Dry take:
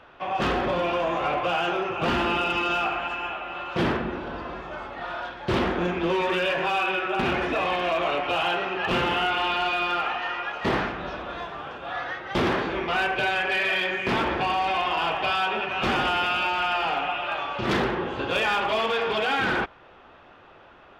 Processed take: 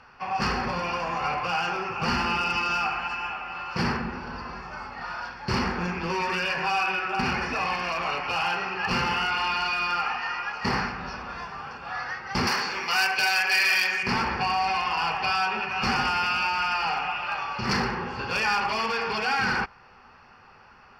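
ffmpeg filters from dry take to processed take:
ffmpeg -i in.wav -filter_complex "[0:a]asettb=1/sr,asplit=3[link_01][link_02][link_03];[link_01]atrim=end=12.474[link_04];[link_02]atrim=start=12.47:end=14.03,asetpts=PTS-STARTPTS,afade=type=in:duration=0.004:curve=qsin,afade=type=out:start_time=1.556:duration=0.004:curve=qsin,aemphasis=mode=production:type=riaa[link_05];[link_03]atrim=start=14.026[link_06];[link_04][link_05]acrossfade=duration=0.004:curve1=hsin:curve2=qsin[link_07];[link_07][link_06]acrossfade=duration=0.004:curve1=qsin:curve2=hsin,superequalizer=6b=0.282:7b=0.501:8b=0.316:13b=0.316:14b=3.55" out.wav

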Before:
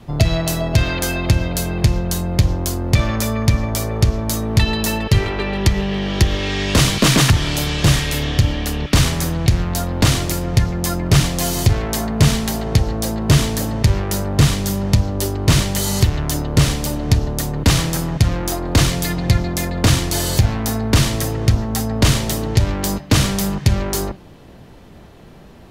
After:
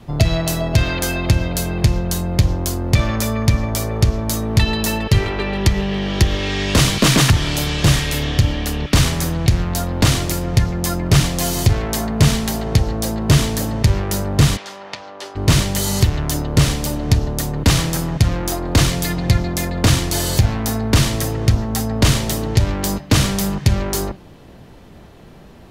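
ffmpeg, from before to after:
ffmpeg -i in.wav -filter_complex "[0:a]asplit=3[link_01][link_02][link_03];[link_01]afade=type=out:start_time=14.56:duration=0.02[link_04];[link_02]highpass=790,lowpass=3500,afade=type=in:start_time=14.56:duration=0.02,afade=type=out:start_time=15.35:duration=0.02[link_05];[link_03]afade=type=in:start_time=15.35:duration=0.02[link_06];[link_04][link_05][link_06]amix=inputs=3:normalize=0" out.wav

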